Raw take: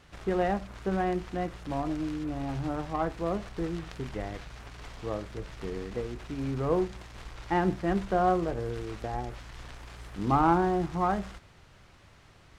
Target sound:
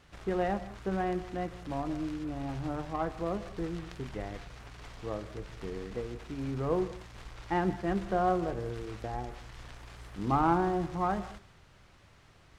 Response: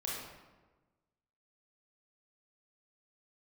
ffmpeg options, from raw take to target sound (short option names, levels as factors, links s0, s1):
-filter_complex "[0:a]asplit=2[s0][s1];[1:a]atrim=start_sample=2205,atrim=end_sample=3087,adelay=143[s2];[s1][s2]afir=irnorm=-1:irlink=0,volume=0.168[s3];[s0][s3]amix=inputs=2:normalize=0,volume=0.708"